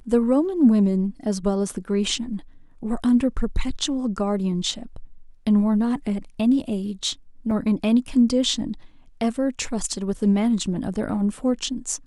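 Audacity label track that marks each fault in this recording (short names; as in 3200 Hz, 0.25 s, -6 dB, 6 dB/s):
7.510000	7.510000	gap 2.2 ms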